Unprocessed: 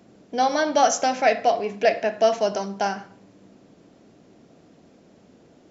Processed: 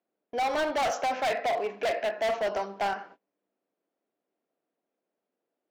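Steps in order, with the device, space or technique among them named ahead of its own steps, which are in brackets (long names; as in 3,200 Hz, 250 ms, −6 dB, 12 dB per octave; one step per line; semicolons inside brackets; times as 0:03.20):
walkie-talkie (band-pass filter 440–2,800 Hz; hard clipping −24.5 dBFS, distortion −5 dB; noise gate −49 dBFS, range −27 dB)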